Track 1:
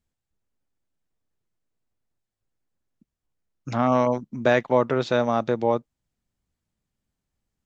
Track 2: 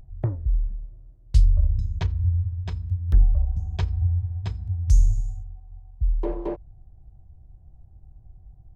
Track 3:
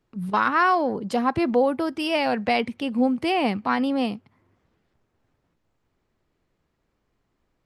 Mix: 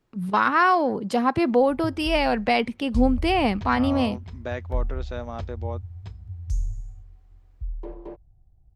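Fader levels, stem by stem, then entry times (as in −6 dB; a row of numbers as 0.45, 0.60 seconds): −12.5, −9.5, +1.0 decibels; 0.00, 1.60, 0.00 seconds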